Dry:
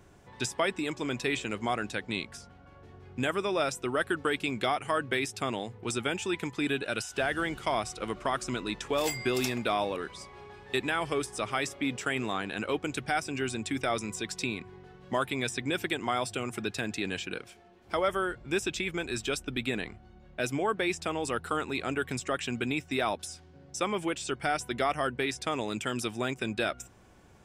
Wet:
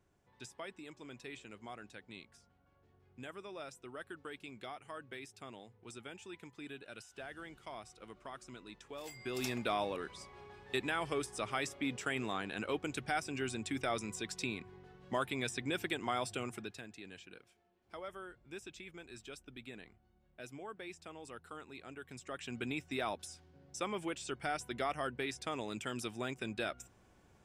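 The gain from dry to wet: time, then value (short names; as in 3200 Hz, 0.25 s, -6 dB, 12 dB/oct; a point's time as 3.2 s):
9.09 s -18 dB
9.5 s -6 dB
16.45 s -6 dB
16.89 s -18 dB
22.03 s -18 dB
22.64 s -8 dB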